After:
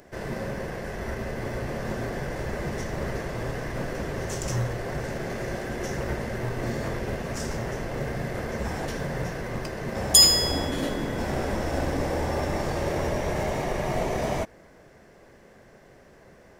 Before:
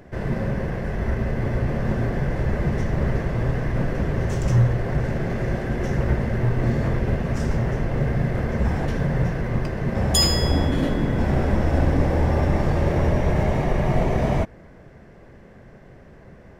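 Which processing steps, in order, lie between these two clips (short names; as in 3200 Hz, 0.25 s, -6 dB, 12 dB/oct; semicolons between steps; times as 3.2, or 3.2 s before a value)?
tone controls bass -9 dB, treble +10 dB; gain -2.5 dB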